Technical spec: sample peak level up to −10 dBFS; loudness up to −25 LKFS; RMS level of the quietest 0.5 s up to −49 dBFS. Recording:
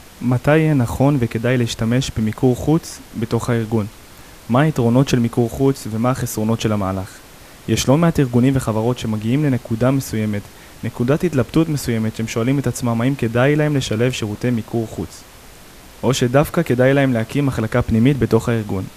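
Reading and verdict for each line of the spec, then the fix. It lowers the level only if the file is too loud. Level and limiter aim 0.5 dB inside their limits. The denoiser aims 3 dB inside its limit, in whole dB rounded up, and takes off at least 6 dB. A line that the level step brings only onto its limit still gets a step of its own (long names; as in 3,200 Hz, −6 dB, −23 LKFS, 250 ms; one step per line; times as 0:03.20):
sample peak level −2.5 dBFS: out of spec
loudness −18.0 LKFS: out of spec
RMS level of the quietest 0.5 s −41 dBFS: out of spec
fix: broadband denoise 6 dB, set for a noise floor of −41 dBFS
level −7.5 dB
brickwall limiter −10.5 dBFS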